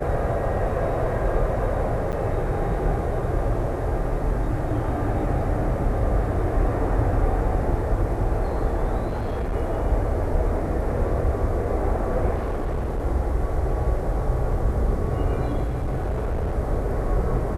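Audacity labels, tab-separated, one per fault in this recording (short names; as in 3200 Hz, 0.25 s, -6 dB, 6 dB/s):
2.120000	2.130000	gap 8.9 ms
9.070000	9.550000	clipped -22.5 dBFS
12.340000	13.060000	clipped -22 dBFS
15.640000	16.550000	clipped -21.5 dBFS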